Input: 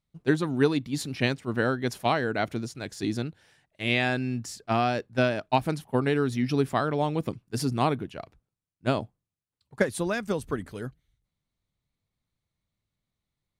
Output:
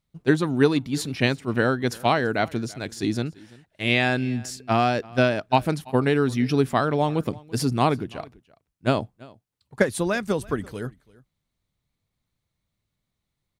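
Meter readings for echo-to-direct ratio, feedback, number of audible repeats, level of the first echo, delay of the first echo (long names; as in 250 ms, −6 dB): −23.0 dB, repeats not evenly spaced, 1, −23.0 dB, 336 ms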